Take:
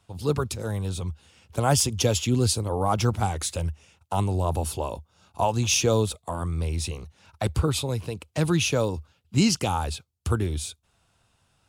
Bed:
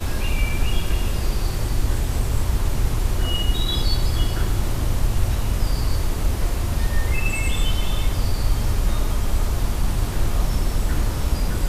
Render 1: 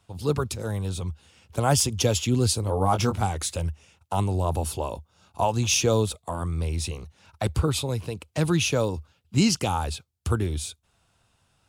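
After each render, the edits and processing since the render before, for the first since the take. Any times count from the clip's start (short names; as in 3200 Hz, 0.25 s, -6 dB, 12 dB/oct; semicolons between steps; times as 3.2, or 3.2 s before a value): 2.61–3.21 doubler 21 ms -6 dB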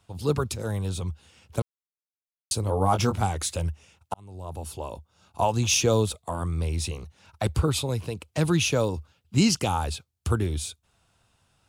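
1.62–2.51 mute; 4.14–5.41 fade in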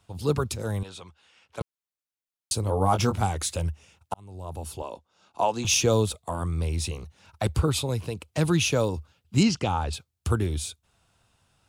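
0.83–1.61 band-pass 1800 Hz, Q 0.57; 4.82–5.65 three-band isolator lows -19 dB, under 200 Hz, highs -13 dB, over 7800 Hz; 9.43–9.93 air absorption 110 m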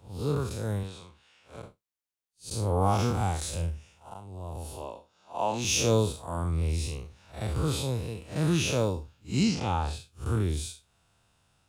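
time blur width 0.128 s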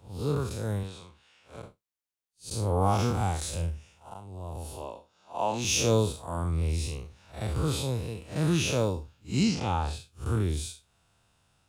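nothing audible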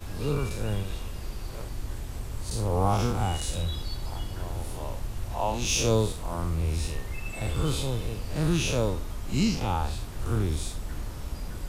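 add bed -13.5 dB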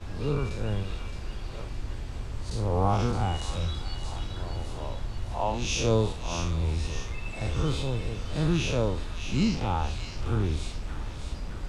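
air absorption 87 m; thin delay 0.617 s, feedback 49%, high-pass 1500 Hz, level -6.5 dB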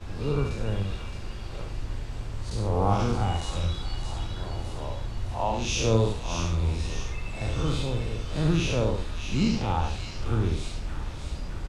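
echo 71 ms -5.5 dB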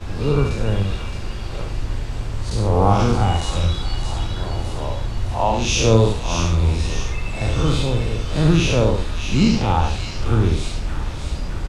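gain +8.5 dB; limiter -3 dBFS, peak gain reduction 1.5 dB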